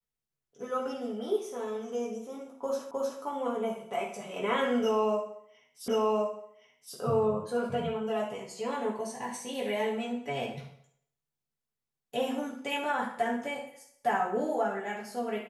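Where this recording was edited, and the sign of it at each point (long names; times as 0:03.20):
0:02.91: the same again, the last 0.31 s
0:05.88: the same again, the last 1.07 s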